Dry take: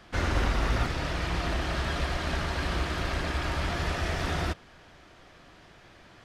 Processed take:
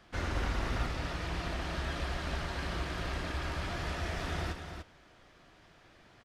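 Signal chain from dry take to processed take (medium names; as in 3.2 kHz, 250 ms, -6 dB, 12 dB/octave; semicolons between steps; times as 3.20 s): delay 294 ms -7.5 dB; trim -7 dB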